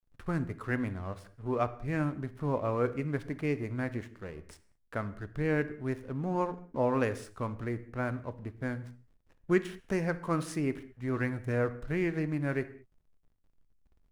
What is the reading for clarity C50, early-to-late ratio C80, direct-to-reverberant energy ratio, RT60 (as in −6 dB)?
15.5 dB, 18.0 dB, 11.5 dB, non-exponential decay